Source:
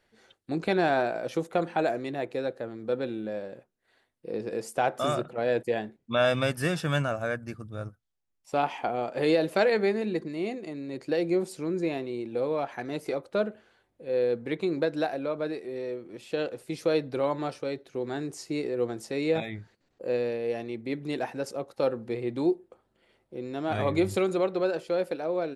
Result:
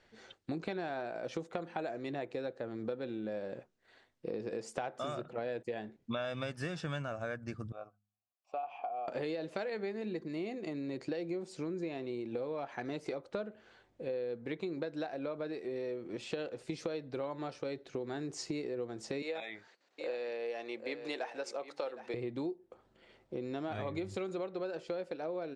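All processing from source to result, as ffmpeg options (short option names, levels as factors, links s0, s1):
-filter_complex "[0:a]asettb=1/sr,asplit=3[s0][s1][s2];[s0]atrim=end=7.724[s3];[s1]atrim=start=7.72:end=9.08,asetpts=PTS-STARTPTS,afade=t=in:d=0.004:c=qsin,afade=t=out:st=1.356:d=0.004:c=qsin,asplit=3[s4][s5][s6];[s4]bandpass=f=730:t=q:w=8,volume=1[s7];[s5]bandpass=f=1090:t=q:w=8,volume=0.501[s8];[s6]bandpass=f=2440:t=q:w=8,volume=0.355[s9];[s7][s8][s9]amix=inputs=3:normalize=0,bandreject=f=51.61:t=h:w=4,bandreject=f=103.22:t=h:w=4,bandreject=f=154.83:t=h:w=4,bandreject=f=206.44:t=h:w=4,bandreject=f=258.05:t=h:w=4,acompressor=threshold=0.0126:ratio=1.5:attack=3.2:release=140:knee=1:detection=peak[s10];[s2]atrim=start=9.076[s11];[s3][s10]acrossfade=d=0.004:c1=hsin:c2=qsin[s12];[s12][s11]acrossfade=d=0.004:c1=qsin:c2=hsin,asettb=1/sr,asplit=3[s13][s14][s15];[s13]atrim=end=19.224[s16];[s14]atrim=start=19.22:end=22.14,asetpts=PTS-STARTPTS,afade=t=in:d=0.004:c=qsin,afade=t=out:st=2.916:d=0.004:c=qsin,highpass=550,aecho=1:1:762:0.2,atrim=end_sample=128772[s17];[s15]atrim=start=22.136[s18];[s16][s17]acrossfade=d=0.004:c1=hsin:c2=qsin[s19];[s19][s18]acrossfade=d=0.004:c1=qsin:c2=hsin,lowpass=f=7500:w=0.5412,lowpass=f=7500:w=1.3066,acompressor=threshold=0.0112:ratio=8,volume=1.5"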